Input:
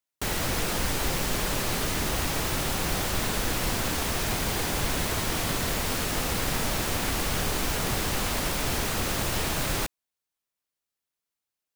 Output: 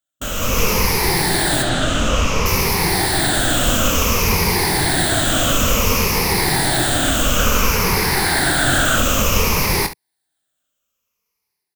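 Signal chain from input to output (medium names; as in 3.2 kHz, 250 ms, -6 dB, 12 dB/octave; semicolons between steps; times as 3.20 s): drifting ripple filter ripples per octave 0.83, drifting -0.57 Hz, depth 13 dB; 7.39–8.99 s: peaking EQ 1.5 kHz +8 dB 0.41 oct; level rider gain up to 9 dB; 1.62–2.46 s: distance through air 77 m; early reflections 23 ms -9 dB, 69 ms -13 dB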